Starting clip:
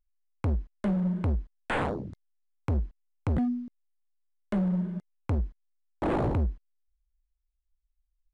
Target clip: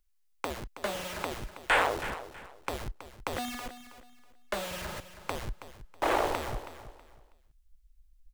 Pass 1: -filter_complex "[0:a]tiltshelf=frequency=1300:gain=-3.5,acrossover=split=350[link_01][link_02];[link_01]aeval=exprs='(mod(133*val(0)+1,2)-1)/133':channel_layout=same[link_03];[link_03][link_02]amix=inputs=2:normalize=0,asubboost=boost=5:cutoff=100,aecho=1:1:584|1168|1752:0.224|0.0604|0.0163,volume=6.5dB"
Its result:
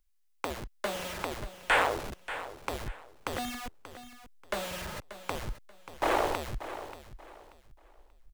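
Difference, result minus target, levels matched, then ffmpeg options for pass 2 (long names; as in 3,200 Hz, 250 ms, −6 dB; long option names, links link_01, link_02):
echo 261 ms late
-filter_complex "[0:a]tiltshelf=frequency=1300:gain=-3.5,acrossover=split=350[link_01][link_02];[link_01]aeval=exprs='(mod(133*val(0)+1,2)-1)/133':channel_layout=same[link_03];[link_03][link_02]amix=inputs=2:normalize=0,asubboost=boost=5:cutoff=100,aecho=1:1:323|646|969:0.224|0.0604|0.0163,volume=6.5dB"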